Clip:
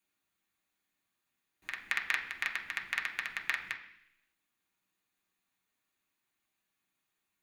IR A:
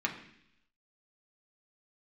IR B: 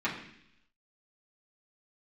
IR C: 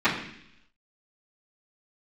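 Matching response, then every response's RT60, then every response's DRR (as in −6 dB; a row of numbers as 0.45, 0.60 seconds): A; 0.70, 0.70, 0.70 seconds; −0.5, −9.5, −19.0 decibels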